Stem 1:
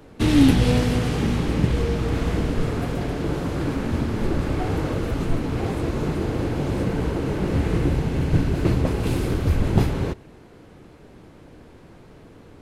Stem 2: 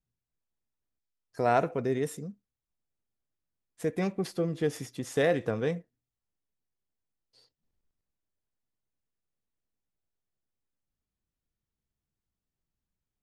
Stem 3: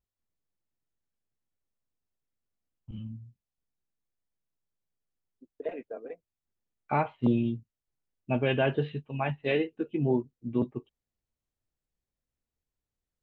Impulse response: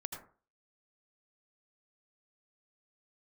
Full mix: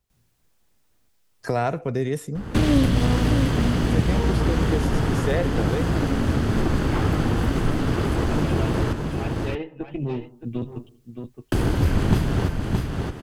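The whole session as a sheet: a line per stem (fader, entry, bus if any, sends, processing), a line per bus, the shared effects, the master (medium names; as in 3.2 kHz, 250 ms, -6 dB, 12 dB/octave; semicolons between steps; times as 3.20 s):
-1.5 dB, 2.35 s, muted 8.93–11.52 s, send -4.5 dB, echo send -6 dB, comb filter that takes the minimum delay 0.64 ms
+1.0 dB, 0.10 s, no send, no echo send, none
-8.5 dB, 0.00 s, send -11 dB, echo send -12.5 dB, valve stage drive 20 dB, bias 0.55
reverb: on, RT60 0.40 s, pre-delay 73 ms
echo: delay 620 ms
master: three bands compressed up and down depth 70%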